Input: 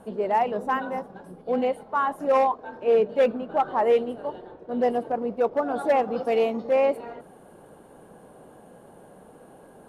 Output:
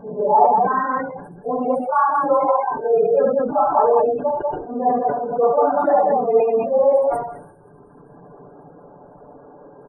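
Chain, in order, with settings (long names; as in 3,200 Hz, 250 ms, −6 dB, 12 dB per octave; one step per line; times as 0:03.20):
random phases in long frames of 100 ms
high shelf with overshoot 1,600 Hz −7.5 dB, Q 1.5
reverb reduction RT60 2 s
dynamic equaliser 320 Hz, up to −4 dB, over −37 dBFS, Q 1.1
gate on every frequency bin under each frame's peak −25 dB strong
comb filter 6.9 ms, depth 54%
loudspeakers that aren't time-aligned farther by 24 metres −3 dB, 66 metres −2 dB
level that may fall only so fast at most 73 dB per second
level +4 dB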